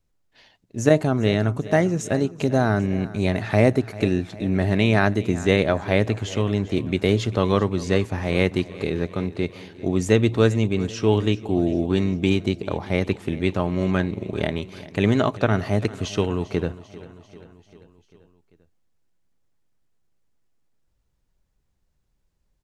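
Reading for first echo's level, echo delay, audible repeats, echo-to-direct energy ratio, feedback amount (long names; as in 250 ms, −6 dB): −18.0 dB, 394 ms, 4, −16.0 dB, 60%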